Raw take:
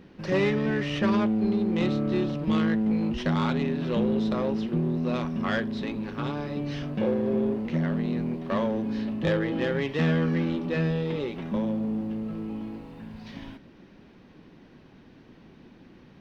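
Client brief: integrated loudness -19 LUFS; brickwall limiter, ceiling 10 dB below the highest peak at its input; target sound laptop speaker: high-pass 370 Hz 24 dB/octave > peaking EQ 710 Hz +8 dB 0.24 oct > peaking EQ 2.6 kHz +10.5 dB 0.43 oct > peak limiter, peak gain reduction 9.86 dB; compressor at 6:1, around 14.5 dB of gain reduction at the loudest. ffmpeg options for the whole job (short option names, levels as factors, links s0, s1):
-af "acompressor=threshold=0.0141:ratio=6,alimiter=level_in=3.35:limit=0.0631:level=0:latency=1,volume=0.299,highpass=f=370:w=0.5412,highpass=f=370:w=1.3066,equalizer=f=710:t=o:w=0.24:g=8,equalizer=f=2600:t=o:w=0.43:g=10.5,volume=29.9,alimiter=limit=0.355:level=0:latency=1"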